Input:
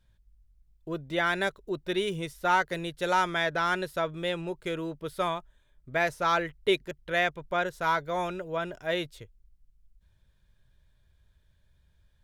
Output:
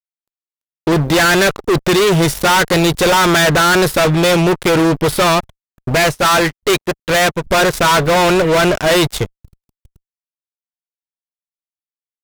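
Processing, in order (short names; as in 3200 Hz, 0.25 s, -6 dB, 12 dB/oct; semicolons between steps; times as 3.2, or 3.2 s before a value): fuzz box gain 43 dB, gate -51 dBFS; 5.95–7.47 upward expander 2.5:1, over -38 dBFS; gain +3 dB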